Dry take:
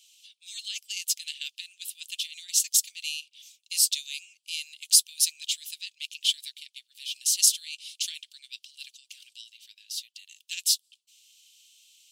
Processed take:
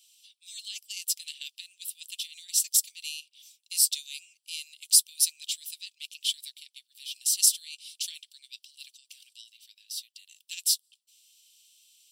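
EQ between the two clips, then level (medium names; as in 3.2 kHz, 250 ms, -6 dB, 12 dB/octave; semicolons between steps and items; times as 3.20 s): high-pass 1.4 kHz; treble shelf 3.9 kHz +10.5 dB; band-stop 6.6 kHz, Q 8.5; -8.5 dB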